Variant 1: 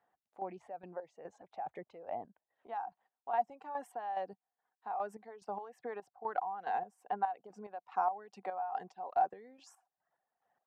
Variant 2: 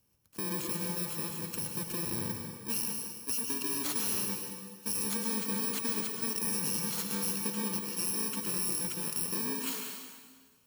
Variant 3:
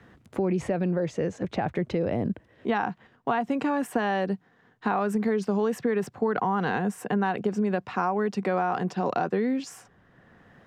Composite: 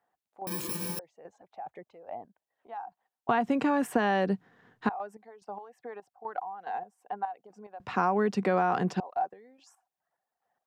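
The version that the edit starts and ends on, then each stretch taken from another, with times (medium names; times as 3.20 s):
1
0.47–0.99 s: from 2
3.29–4.89 s: from 3
7.80–9.00 s: from 3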